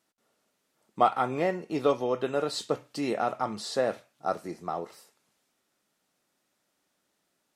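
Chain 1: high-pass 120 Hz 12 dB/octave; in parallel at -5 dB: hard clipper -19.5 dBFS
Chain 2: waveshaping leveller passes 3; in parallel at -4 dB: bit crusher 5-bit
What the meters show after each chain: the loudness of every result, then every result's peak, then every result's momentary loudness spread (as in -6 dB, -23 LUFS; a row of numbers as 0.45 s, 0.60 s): -26.5 LUFS, -17.0 LUFS; -7.5 dBFS, -5.5 dBFS; 8 LU, 7 LU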